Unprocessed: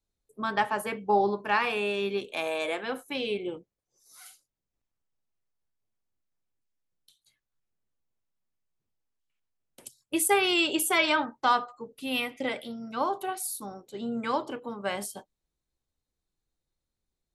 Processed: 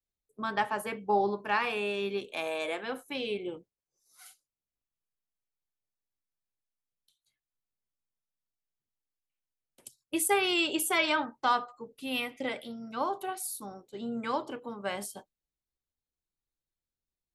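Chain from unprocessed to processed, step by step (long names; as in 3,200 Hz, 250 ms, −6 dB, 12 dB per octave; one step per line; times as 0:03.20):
noise gate −51 dBFS, range −7 dB
level −3 dB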